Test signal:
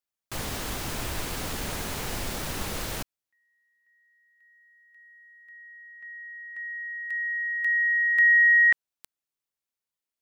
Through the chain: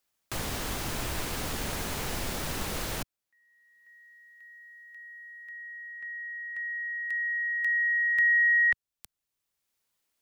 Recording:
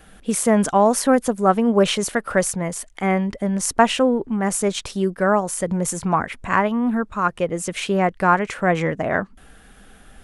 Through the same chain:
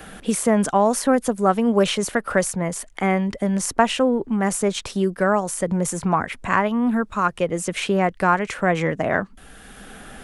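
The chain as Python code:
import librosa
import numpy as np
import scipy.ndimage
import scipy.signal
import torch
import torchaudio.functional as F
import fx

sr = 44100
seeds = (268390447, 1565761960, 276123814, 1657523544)

y = fx.band_squash(x, sr, depth_pct=40)
y = y * 10.0 ** (-1.0 / 20.0)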